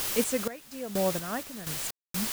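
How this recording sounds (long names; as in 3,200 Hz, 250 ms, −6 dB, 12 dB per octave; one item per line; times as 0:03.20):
a quantiser's noise floor 6 bits, dither triangular
sample-and-hold tremolo 4.2 Hz, depth 100%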